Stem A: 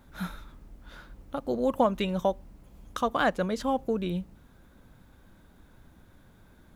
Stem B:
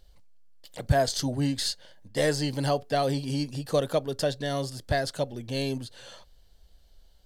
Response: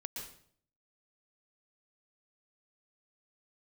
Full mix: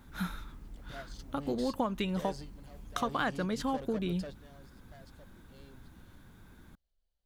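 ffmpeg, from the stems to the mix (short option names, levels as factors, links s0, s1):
-filter_complex "[0:a]equalizer=f=590:w=2.2:g=-7,acompressor=threshold=0.0251:ratio=2.5,volume=1.19,asplit=2[s0][s1];[1:a]highshelf=f=7000:g=-9,asoftclip=type=tanh:threshold=0.0473,volume=0.224[s2];[s1]apad=whole_len=319893[s3];[s2][s3]sidechaingate=range=0.251:threshold=0.00631:ratio=16:detection=peak[s4];[s0][s4]amix=inputs=2:normalize=0"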